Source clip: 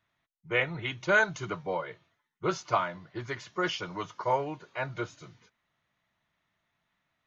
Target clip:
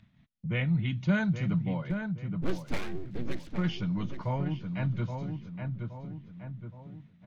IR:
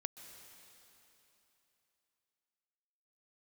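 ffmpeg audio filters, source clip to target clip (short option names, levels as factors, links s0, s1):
-filter_complex "[0:a]lowpass=3600,lowshelf=f=290:t=q:w=3:g=10,asettb=1/sr,asplit=3[s0][s1][s2];[s0]atrim=end=1.904[s3];[s1]atrim=start=1.9:end=3.49,asetpts=PTS-STARTPTS,afade=t=in:d=0.004:c=qsin,afade=t=out:st=1.586:d=0.004:c=qsin,aeval=exprs='abs(val(0))':c=same[s4];[s2]atrim=start=3.486[s5];[s3][s4]acrossfade=d=0.004:c1=hsin:c2=qsin[s6];[s6][s5]acrossfade=d=0.004:c1=qsin:c2=hsin,asplit=2[s7][s8];[s8]adelay=821,lowpass=f=1800:p=1,volume=0.422,asplit=2[s9][s10];[s10]adelay=821,lowpass=f=1800:p=1,volume=0.31,asplit=2[s11][s12];[s12]adelay=821,lowpass=f=1800:p=1,volume=0.31,asplit=2[s13][s14];[s14]adelay=821,lowpass=f=1800:p=1,volume=0.31[s15];[s7][s9][s11][s13][s15]amix=inputs=5:normalize=0,agate=range=0.0224:threshold=0.00126:ratio=3:detection=peak,equalizer=f=1200:t=o:w=1.7:g=-9.5,asplit=2[s16][s17];[s17]acompressor=mode=upward:threshold=0.0794:ratio=2.5,volume=0.891[s18];[s16][s18]amix=inputs=2:normalize=0,volume=0.422"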